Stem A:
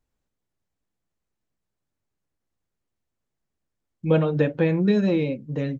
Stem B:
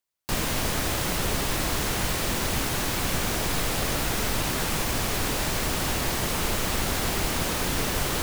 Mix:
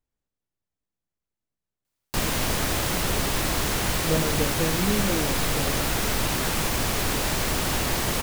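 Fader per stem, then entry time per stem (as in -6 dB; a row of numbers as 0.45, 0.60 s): -6.5, +1.5 dB; 0.00, 1.85 s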